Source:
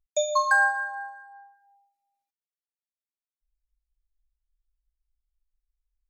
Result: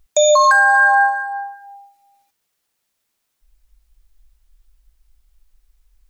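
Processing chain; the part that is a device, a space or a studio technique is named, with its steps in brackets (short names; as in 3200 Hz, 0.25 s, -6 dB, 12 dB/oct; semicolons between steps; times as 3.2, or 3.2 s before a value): loud club master (compressor 2.5:1, threshold -25 dBFS, peak gain reduction 6 dB; hard clip -16 dBFS, distortion -41 dB; maximiser +27.5 dB); gain -4.5 dB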